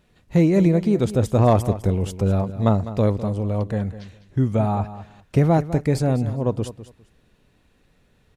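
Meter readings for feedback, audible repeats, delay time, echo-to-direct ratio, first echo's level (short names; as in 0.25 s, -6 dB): 19%, 2, 0.203 s, -14.0 dB, -14.0 dB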